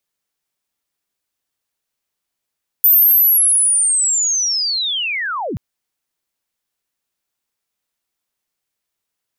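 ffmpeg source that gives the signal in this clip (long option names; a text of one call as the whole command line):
ffmpeg -f lavfi -i "aevalsrc='pow(10,(-7-13.5*t/2.73)/20)*sin(2*PI*(14000*t-13925*t*t/(2*2.73)))':duration=2.73:sample_rate=44100" out.wav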